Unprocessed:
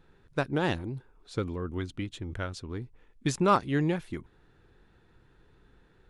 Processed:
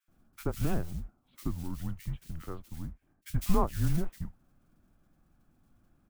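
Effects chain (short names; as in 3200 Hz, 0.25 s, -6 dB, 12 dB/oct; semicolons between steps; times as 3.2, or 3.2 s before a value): mistuned SSB -170 Hz 160–3200 Hz; tilt -2.5 dB/oct; modulation noise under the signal 20 dB; bands offset in time highs, lows 80 ms, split 1700 Hz; gain -7.5 dB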